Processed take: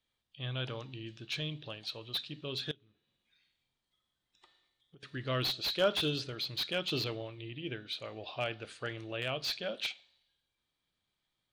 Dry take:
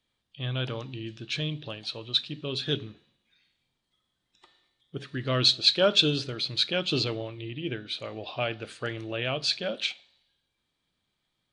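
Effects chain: 2.71–5.03 compressor 20:1, threshold -49 dBFS, peak gain reduction 27 dB; bell 220 Hz -3.5 dB 1.9 oct; slew limiter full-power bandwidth 200 Hz; gain -5 dB

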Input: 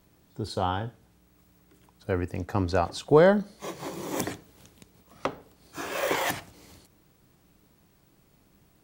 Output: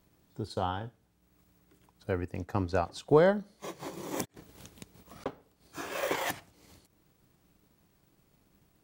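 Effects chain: 4.25–5.26 negative-ratio compressor -47 dBFS, ratio -0.5; transient shaper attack +2 dB, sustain -5 dB; gain -5 dB

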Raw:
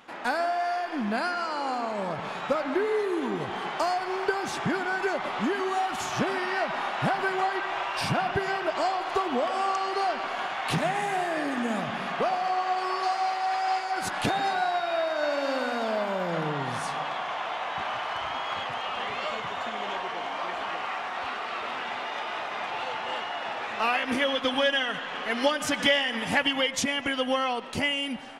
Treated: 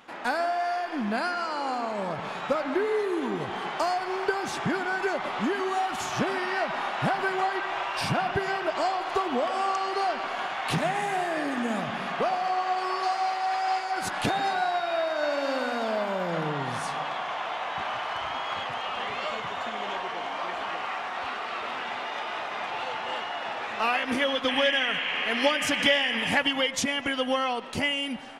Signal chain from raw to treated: painted sound noise, 24.48–26.35, 1600–3300 Hz -31 dBFS

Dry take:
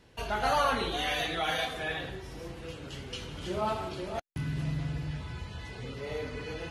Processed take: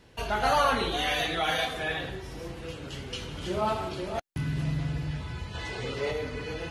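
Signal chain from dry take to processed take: spectral gain 5.54–6.11, 290–9200 Hz +6 dB; gain +3 dB

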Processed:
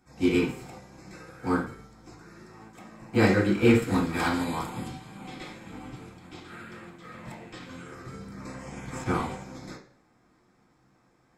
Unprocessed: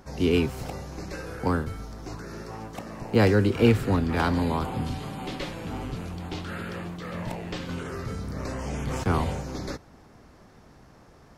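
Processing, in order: 3.82–4.88 high shelf 4700 Hz +10.5 dB; reverb RT60 0.60 s, pre-delay 3 ms, DRR -5.5 dB; upward expander 1.5:1, over -37 dBFS; gain -4 dB

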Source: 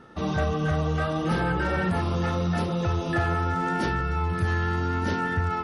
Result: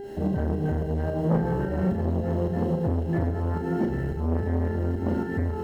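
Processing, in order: HPF 57 Hz 24 dB/oct; bell 230 Hz +4 dB 0.52 oct; requantised 6-bit, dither triangular; pump 109 bpm, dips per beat 2, -15 dB, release 0.129 s; buzz 400 Hz, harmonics 34, -37 dBFS -7 dB/oct; running mean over 37 samples; on a send: flutter echo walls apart 6.3 m, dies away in 0.45 s; on the sum: core saturation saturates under 400 Hz; gain +3 dB

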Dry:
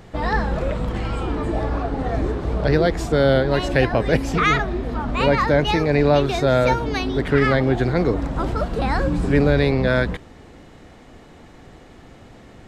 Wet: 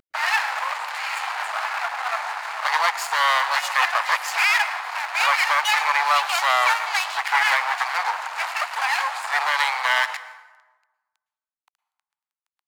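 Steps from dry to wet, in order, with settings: minimum comb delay 0.42 ms; in parallel at -1.5 dB: compressor, threshold -24 dBFS, peak gain reduction 12 dB; on the sum: high shelf 7100 Hz +12 dB; crossover distortion -29 dBFS; steep high-pass 820 Hz 48 dB/oct; tilt -3 dB/oct; vibrato 1.3 Hz 16 cents; on a send at -14 dB: reverb RT60 1.2 s, pre-delay 0.102 s; on the sum: maximiser +14.5 dB; gain -6.5 dB

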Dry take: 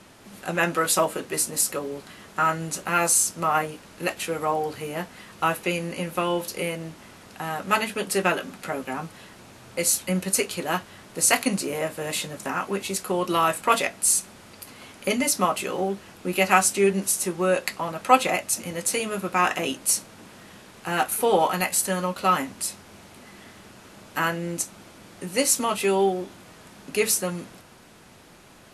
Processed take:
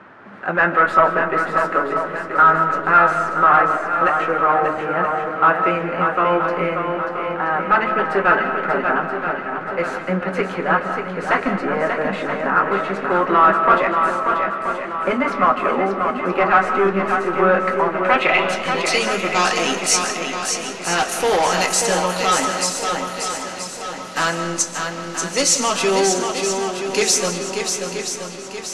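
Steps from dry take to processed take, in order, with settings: HPF 220 Hz 6 dB/oct; hard clip -20 dBFS, distortion -9 dB; digital reverb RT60 1.2 s, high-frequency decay 0.4×, pre-delay 0.11 s, DRR 8.5 dB; low-pass sweep 1500 Hz -> 6200 Hz, 17.88–19.18; on a send: swung echo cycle 0.977 s, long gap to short 1.5:1, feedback 44%, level -6 dB; on the sum: gain +6 dB

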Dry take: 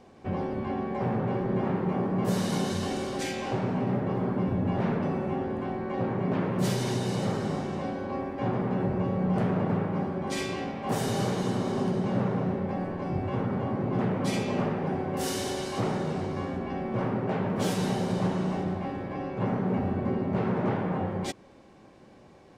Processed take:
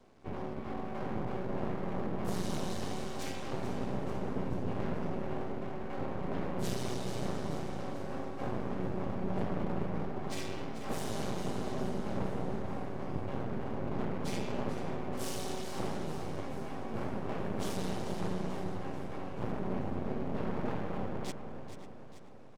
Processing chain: bell 1400 Hz -3 dB 1.9 oct; notches 60/120/180 Hz; outdoor echo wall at 93 m, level -11 dB; half-wave rectifier; on a send: feedback echo 0.437 s, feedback 58%, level -11.5 dB; on the sum: gain -3.5 dB

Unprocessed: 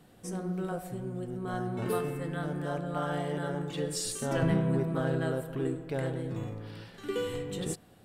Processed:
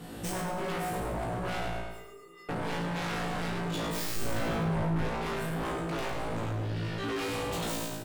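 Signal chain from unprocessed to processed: tracing distortion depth 0.17 ms; vocal rider within 4 dB 0.5 s; sine folder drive 15 dB, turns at -18 dBFS; 1.7–2.49 resonator 400 Hz, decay 0.4 s, harmonics odd, mix 100%; 6.66–7.19 high shelf 6000 Hz -11.5 dB; resonator 56 Hz, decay 0.51 s, harmonics all, mix 100%; feedback echo 0.104 s, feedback 42%, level -6.5 dB; compressor 2.5:1, threshold -30 dBFS, peak gain reduction 5 dB; hard clip -32 dBFS, distortion -11 dB; 4.16–5.09 low shelf 400 Hz +5.5 dB; gain +2 dB

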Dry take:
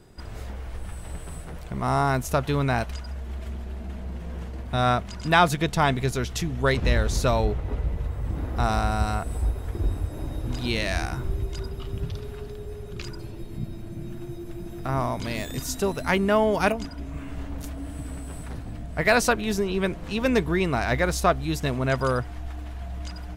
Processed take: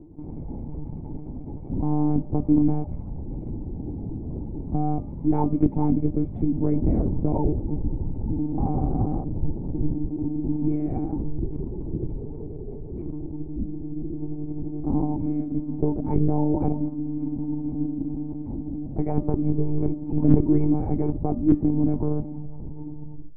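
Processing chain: tape stop at the end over 1.09 s; in parallel at +1 dB: limiter -16.5 dBFS, peak gain reduction 11.5 dB; on the sum: vocal tract filter u; bell 1200 Hz -3 dB 0.4 oct; hard clip -18 dBFS, distortion -41 dB; monotone LPC vocoder at 8 kHz 150 Hz; low shelf 400 Hz +7 dB; de-hum 199 Hz, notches 30; reverse; upward compressor, threshold -38 dBFS; reverse; gain +3 dB

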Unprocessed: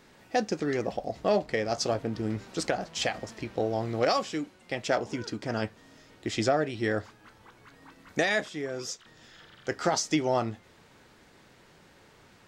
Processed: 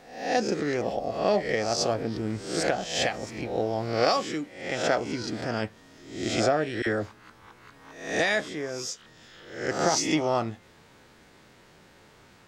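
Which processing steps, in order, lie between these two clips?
spectral swells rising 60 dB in 0.62 s; 6.82–8.2 dispersion lows, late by 45 ms, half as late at 950 Hz

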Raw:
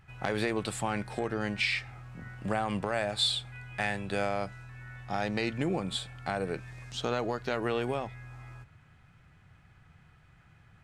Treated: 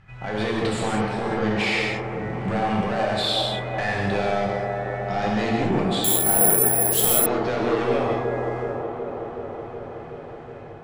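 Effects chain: AGC gain up to 5 dB; in parallel at +1 dB: limiter -18.5 dBFS, peak gain reduction 9 dB; on the sum: soft clip -20.5 dBFS, distortion -9 dB; air absorption 78 m; on a send: band-limited delay 0.372 s, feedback 76%, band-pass 560 Hz, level -4 dB; on the sum: non-linear reverb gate 0.22 s flat, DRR -2.5 dB; 6.04–7.26 careless resampling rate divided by 4×, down none, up zero stuff; gain -2 dB

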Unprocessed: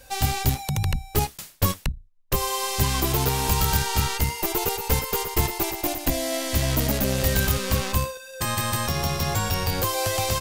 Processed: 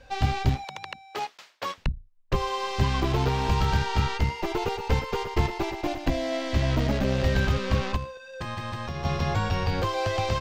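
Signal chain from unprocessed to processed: 0.64–1.78 HPF 640 Hz 12 dB/oct; 7.96–9.05 compressor 2.5:1, threshold -31 dBFS, peak gain reduction 9 dB; air absorption 200 m

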